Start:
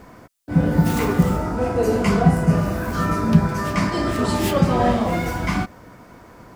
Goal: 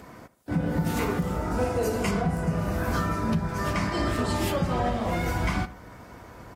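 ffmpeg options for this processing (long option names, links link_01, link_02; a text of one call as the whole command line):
ffmpeg -i in.wav -filter_complex "[0:a]asettb=1/sr,asplit=3[link_01][link_02][link_03];[link_01]atrim=end=1.514[link_04];[link_02]atrim=start=1.51:end=2.11,asetpts=PTS-STARTPTS,afade=type=in:duration=0.004:curve=qsin,afade=type=out:start_time=0.596:duration=0.004:curve=qsin,highshelf=frequency=4800:gain=8.5[link_05];[link_03]atrim=start=2.106[link_06];[link_04][link_05]acrossfade=duration=0.004:curve1=hsin:curve2=qsin[link_07];[link_07][link_06]acrossfade=duration=0.004:curve1=qsin:curve2=hsin,asplit=2[link_08][link_09];[link_09]adelay=76,lowpass=frequency=3100:poles=1,volume=-18.5dB,asplit=2[link_10][link_11];[link_11]adelay=76,lowpass=frequency=3100:poles=1,volume=0.5,asplit=2[link_12][link_13];[link_13]adelay=76,lowpass=frequency=3100:poles=1,volume=0.5,asplit=2[link_14][link_15];[link_15]adelay=76,lowpass=frequency=3100:poles=1,volume=0.5[link_16];[link_08][link_10][link_12][link_14][link_16]amix=inputs=5:normalize=0,acrossover=split=1800[link_17][link_18];[link_17]asubboost=boost=3:cutoff=96[link_19];[link_18]acompressor=mode=upward:threshold=-56dB:ratio=2.5[link_20];[link_19][link_20]amix=inputs=2:normalize=0,highpass=58,alimiter=limit=-15dB:level=0:latency=1:release=455,volume=-1.5dB" -ar 48000 -c:a aac -b:a 48k out.aac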